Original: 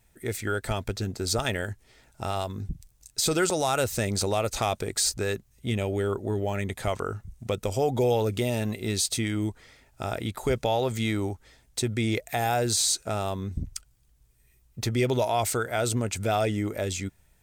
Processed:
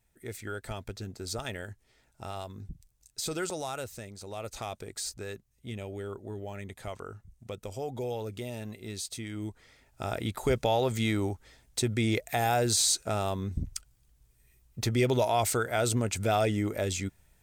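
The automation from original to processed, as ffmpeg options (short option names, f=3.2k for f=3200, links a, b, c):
-af "volume=10dB,afade=t=out:st=3.55:d=0.63:silence=0.281838,afade=t=in:st=4.18:d=0.27:silence=0.354813,afade=t=in:st=9.25:d=1.07:silence=0.316228"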